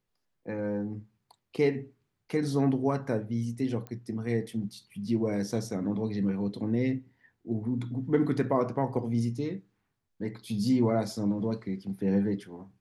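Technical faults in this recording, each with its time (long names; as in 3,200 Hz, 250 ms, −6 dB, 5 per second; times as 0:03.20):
0:03.87: click −26 dBFS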